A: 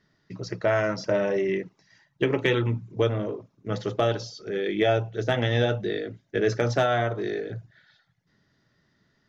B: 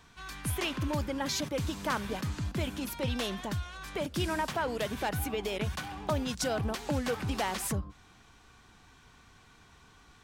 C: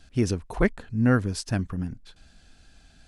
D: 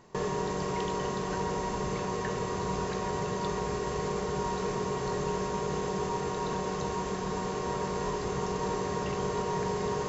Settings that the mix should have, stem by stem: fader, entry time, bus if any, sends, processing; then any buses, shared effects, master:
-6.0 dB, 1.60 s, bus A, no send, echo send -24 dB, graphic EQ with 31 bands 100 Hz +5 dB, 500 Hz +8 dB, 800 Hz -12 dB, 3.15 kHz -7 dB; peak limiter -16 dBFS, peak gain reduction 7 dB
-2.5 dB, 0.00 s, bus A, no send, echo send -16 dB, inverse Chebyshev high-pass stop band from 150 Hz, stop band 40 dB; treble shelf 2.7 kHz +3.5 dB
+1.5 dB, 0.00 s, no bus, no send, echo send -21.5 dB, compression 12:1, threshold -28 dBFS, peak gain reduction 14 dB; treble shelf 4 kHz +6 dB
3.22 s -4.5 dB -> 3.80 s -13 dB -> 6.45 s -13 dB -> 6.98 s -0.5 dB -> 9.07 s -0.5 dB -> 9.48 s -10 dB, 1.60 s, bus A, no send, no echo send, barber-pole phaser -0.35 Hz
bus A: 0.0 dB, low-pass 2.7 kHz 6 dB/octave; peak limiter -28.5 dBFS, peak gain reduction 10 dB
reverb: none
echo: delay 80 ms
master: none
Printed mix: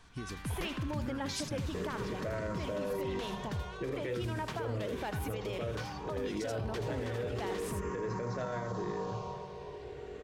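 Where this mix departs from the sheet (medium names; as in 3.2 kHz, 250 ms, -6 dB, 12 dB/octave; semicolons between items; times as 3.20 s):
stem B: missing inverse Chebyshev high-pass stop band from 150 Hz, stop band 40 dB; stem C +1.5 dB -> -10.5 dB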